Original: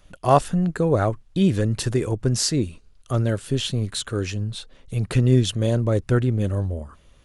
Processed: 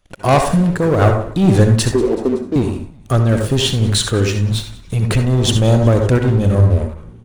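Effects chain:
0:01.91–0:02.56: elliptic band-pass filter 220–790 Hz
leveller curve on the samples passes 3
echo with shifted repeats 188 ms, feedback 62%, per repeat −71 Hz, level −21 dB
on a send at −4 dB: convolution reverb RT60 0.40 s, pre-delay 57 ms
on the sum: amplitude modulation by smooth noise, depth 55%

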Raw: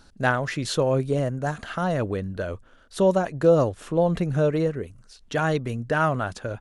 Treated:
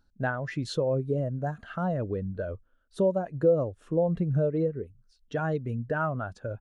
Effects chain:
downward compressor 2.5 to 1, threshold −25 dBFS, peak gain reduction 8.5 dB
every bin expanded away from the loudest bin 1.5 to 1

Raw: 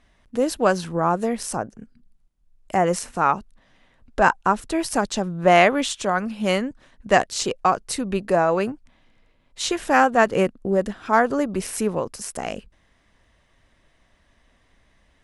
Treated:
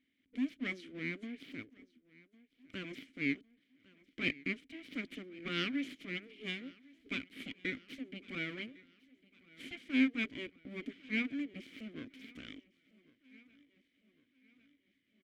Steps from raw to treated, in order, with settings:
full-wave rectification
formant filter i
repeating echo 1,104 ms, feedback 53%, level −23 dB
amplitude modulation by smooth noise, depth 60%
level +2 dB

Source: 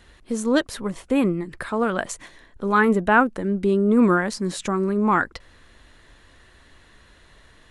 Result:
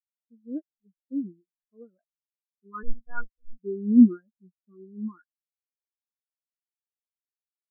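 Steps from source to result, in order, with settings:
notch filter 820 Hz, Q 12
0:02.83–0:03.58: one-pitch LPC vocoder at 8 kHz 240 Hz
every bin expanded away from the loudest bin 4 to 1
level −3 dB

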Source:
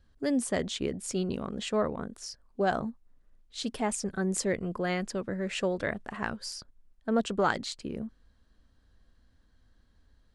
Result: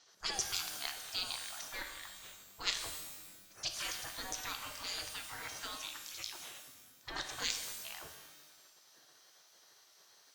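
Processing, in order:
gate on every frequency bin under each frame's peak −30 dB weak
low-pass with resonance 6,000 Hz, resonance Q 5.3
reverb with rising layers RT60 1.1 s, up +12 semitones, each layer −2 dB, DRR 5 dB
level +10 dB

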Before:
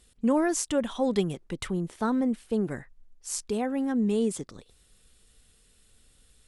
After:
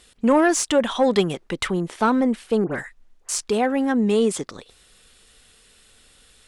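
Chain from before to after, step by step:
mid-hump overdrive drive 12 dB, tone 4,000 Hz, clips at −13 dBFS
0:02.64–0:03.29: all-pass dispersion highs, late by 78 ms, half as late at 2,000 Hz
level +6.5 dB

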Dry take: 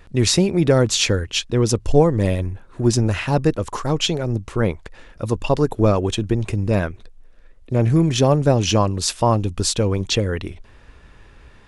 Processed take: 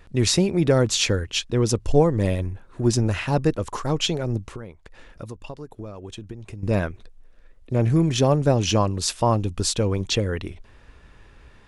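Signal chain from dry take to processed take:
0:04.43–0:06.63: downward compressor 12 to 1, threshold −30 dBFS, peak gain reduction 19 dB
level −3 dB

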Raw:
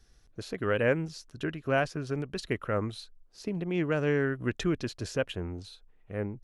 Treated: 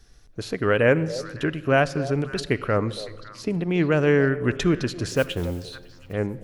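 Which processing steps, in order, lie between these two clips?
0:05.08–0:06.13: noise that follows the level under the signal 23 dB
echo through a band-pass that steps 279 ms, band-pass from 540 Hz, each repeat 1.4 octaves, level −12 dB
rectangular room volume 2,800 cubic metres, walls mixed, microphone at 0.34 metres
level +7.5 dB

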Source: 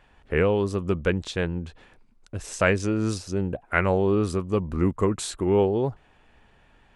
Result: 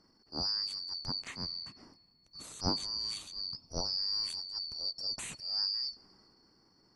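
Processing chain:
band-splitting scrambler in four parts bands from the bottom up 2341
high-shelf EQ 9,000 Hz +11.5 dB
transient designer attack −11 dB, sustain +4 dB
tilt shelving filter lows +6.5 dB, about 1,400 Hz
on a send: convolution reverb RT60 3.1 s, pre-delay 3 ms, DRR 22 dB
on the sum: level −9 dB

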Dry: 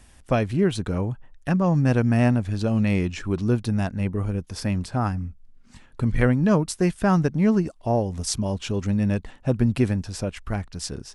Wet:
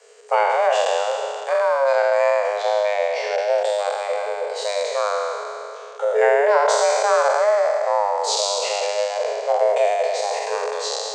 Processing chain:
peak hold with a decay on every bin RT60 2.87 s
mains-hum notches 50/100/150/200 Hz
formants moved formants −5 semitones
frequency shifter +410 Hz

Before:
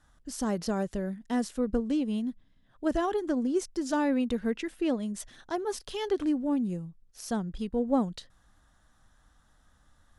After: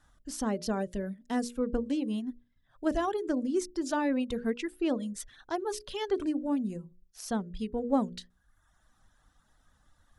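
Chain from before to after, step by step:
reverb reduction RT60 0.83 s
mains-hum notches 60/120/180/240/300/360/420/480/540/600 Hz

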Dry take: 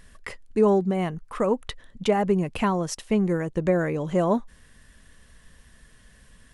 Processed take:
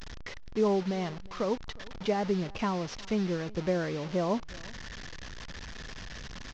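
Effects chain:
linear delta modulator 32 kbit/s, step −28.5 dBFS
slap from a distant wall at 62 metres, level −23 dB
level −7 dB

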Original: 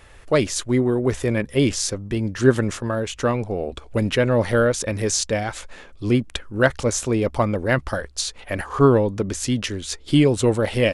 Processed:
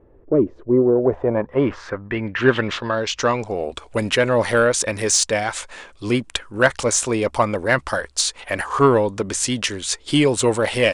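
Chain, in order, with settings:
low-pass filter sweep 350 Hz → 9,100 Hz, 0:00.51–0:03.63
mid-hump overdrive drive 10 dB, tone 5,200 Hz, clips at −1.5 dBFS
parametric band 980 Hz +3.5 dB 0.23 octaves

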